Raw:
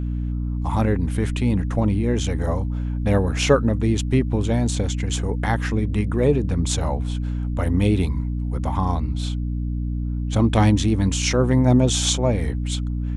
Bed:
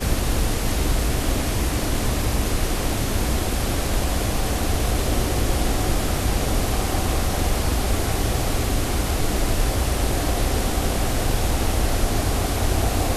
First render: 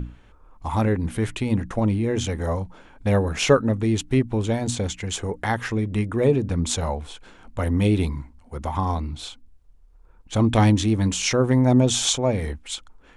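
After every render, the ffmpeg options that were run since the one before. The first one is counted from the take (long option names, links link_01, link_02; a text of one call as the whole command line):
ffmpeg -i in.wav -af "bandreject=frequency=60:width_type=h:width=6,bandreject=frequency=120:width_type=h:width=6,bandreject=frequency=180:width_type=h:width=6,bandreject=frequency=240:width_type=h:width=6,bandreject=frequency=300:width_type=h:width=6" out.wav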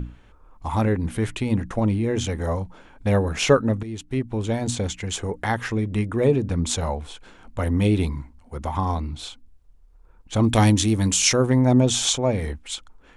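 ffmpeg -i in.wav -filter_complex "[0:a]asettb=1/sr,asplit=3[link_01][link_02][link_03];[link_01]atrim=end=10.434[link_04];[link_02]atrim=start=10.43:end=11.47,asetpts=PTS-STARTPTS,afade=type=in:duration=0.004:curve=qsin,afade=type=out:start_time=1.036:duration=0.004:curve=qsin,aemphasis=mode=production:type=50kf[link_05];[link_03]atrim=start=11.466[link_06];[link_04][link_05]acrossfade=duration=0.004:curve1=hsin:curve2=qsin[link_07];[link_07][link_06]acrossfade=duration=0.004:curve1=qsin:curve2=hsin,asplit=2[link_08][link_09];[link_08]atrim=end=3.83,asetpts=PTS-STARTPTS,afade=type=out:start_time=3.826:duration=0.004:curve=hsin:silence=0.199526[link_10];[link_09]atrim=start=3.83,asetpts=PTS-STARTPTS,afade=type=in:duration=0.8:silence=0.199526[link_11];[link_10][link_11]concat=n=2:v=0:a=1" out.wav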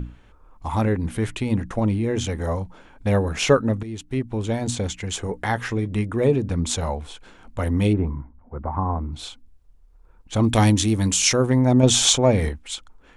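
ffmpeg -i in.wav -filter_complex "[0:a]asettb=1/sr,asplit=3[link_01][link_02][link_03];[link_01]atrim=end=5.254[link_04];[link_02]atrim=start=5.25:end=5.89,asetpts=PTS-STARTPTS,afade=type=in:duration=0.004:curve=qsin,afade=type=out:start_time=0.636:duration=0.004:curve=qsin,asplit=2[link_05][link_06];[link_06]adelay=16,volume=-12dB[link_07];[link_05][link_07]amix=inputs=2:normalize=0,atrim=end_sample=28224[link_08];[link_03]atrim=start=5.886[link_09];[link_04][link_08]acrossfade=duration=0.004:curve1=hsin:curve2=qsin[link_10];[link_10][link_09]acrossfade=duration=0.004:curve1=qsin:curve2=hsin,asplit=3[link_11][link_12][link_13];[link_11]afade=type=out:start_time=7.92:duration=0.02[link_14];[link_12]lowpass=frequency=1500:width=0.5412,lowpass=frequency=1500:width=1.3066,afade=type=in:start_time=7.92:duration=0.02,afade=type=out:start_time=9.12:duration=0.02[link_15];[link_13]afade=type=in:start_time=9.12:duration=0.02[link_16];[link_14][link_15][link_16]amix=inputs=3:normalize=0,asettb=1/sr,asplit=3[link_17][link_18][link_19];[link_17]atrim=end=11.834[link_20];[link_18]atrim=start=11.83:end=12.49,asetpts=PTS-STARTPTS,afade=type=in:duration=0.004:curve=qsin,afade=type=out:start_time=0.656:duration=0.004:curve=qsin,acontrast=24[link_21];[link_19]atrim=start=12.486[link_22];[link_20][link_21]acrossfade=duration=0.004:curve1=hsin:curve2=qsin[link_23];[link_23][link_22]acrossfade=duration=0.004:curve1=qsin:curve2=hsin" out.wav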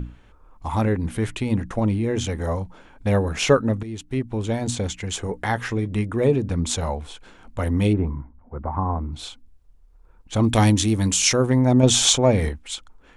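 ffmpeg -i in.wav -af anull out.wav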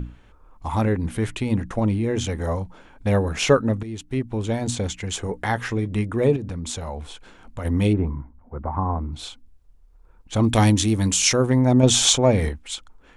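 ffmpeg -i in.wav -filter_complex "[0:a]asettb=1/sr,asplit=3[link_01][link_02][link_03];[link_01]atrim=end=6.364[link_04];[link_02]atrim=start=6.36:end=7.65,asetpts=PTS-STARTPTS,afade=type=in:duration=0.004:curve=qsin,afade=type=out:start_time=1.286:duration=0.004:curve=qsin,acompressor=threshold=-27dB:ratio=4:attack=3.2:release=140:knee=1:detection=peak[link_05];[link_03]atrim=start=7.646[link_06];[link_04][link_05]acrossfade=duration=0.004:curve1=hsin:curve2=qsin[link_07];[link_07][link_06]acrossfade=duration=0.004:curve1=qsin:curve2=hsin" out.wav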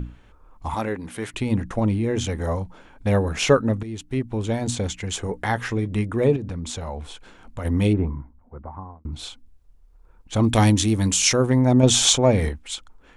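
ffmpeg -i in.wav -filter_complex "[0:a]asettb=1/sr,asplit=3[link_01][link_02][link_03];[link_01]atrim=end=0.744[link_04];[link_02]atrim=start=0.74:end=1.34,asetpts=PTS-STARTPTS,afade=type=in:duration=0.004:curve=qsin,afade=type=out:start_time=0.596:duration=0.004:curve=qsin,highpass=frequency=460:poles=1[link_05];[link_03]atrim=start=1.336[link_06];[link_04][link_05]acrossfade=duration=0.004:curve1=hsin:curve2=qsin[link_07];[link_07][link_06]acrossfade=duration=0.004:curve1=qsin:curve2=hsin,asettb=1/sr,asplit=3[link_08][link_09][link_10];[link_08]atrim=end=6.244[link_11];[link_09]atrim=start=6.24:end=7.04,asetpts=PTS-STARTPTS,afade=type=in:duration=0.004:curve=qsin,afade=type=out:start_time=0.796:duration=0.004:curve=qsin,highshelf=frequency=10000:gain=-8.5[link_12];[link_10]atrim=start=7.036[link_13];[link_11][link_12]acrossfade=duration=0.004:curve1=hsin:curve2=qsin[link_14];[link_14][link_13]acrossfade=duration=0.004:curve1=qsin:curve2=hsin,asplit=2[link_15][link_16];[link_15]atrim=end=9.05,asetpts=PTS-STARTPTS,afade=type=out:start_time=8.03:duration=1.02[link_17];[link_16]atrim=start=9.05,asetpts=PTS-STARTPTS,afade=type=in:duration=0.004:curve=hsin[link_18];[link_17][link_18]concat=n=2:v=0:a=1" out.wav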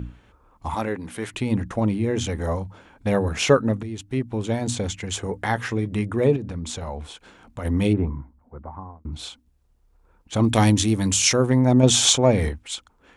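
ffmpeg -i in.wav -af "highpass=47,bandreject=frequency=50:width_type=h:width=6,bandreject=frequency=100:width_type=h:width=6" out.wav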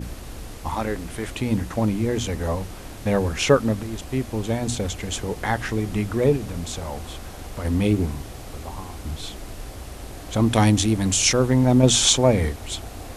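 ffmpeg -i in.wav -i bed.wav -filter_complex "[1:a]volume=-15dB[link_01];[0:a][link_01]amix=inputs=2:normalize=0" out.wav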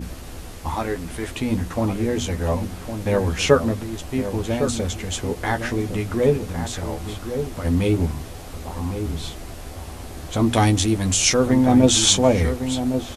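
ffmpeg -i in.wav -filter_complex "[0:a]asplit=2[link_01][link_02];[link_02]adelay=12,volume=-6.5dB[link_03];[link_01][link_03]amix=inputs=2:normalize=0,asplit=2[link_04][link_05];[link_05]adelay=1108,volume=-8dB,highshelf=frequency=4000:gain=-24.9[link_06];[link_04][link_06]amix=inputs=2:normalize=0" out.wav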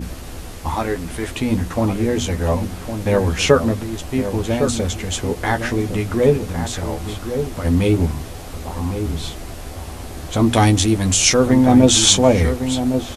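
ffmpeg -i in.wav -af "volume=3.5dB,alimiter=limit=-1dB:level=0:latency=1" out.wav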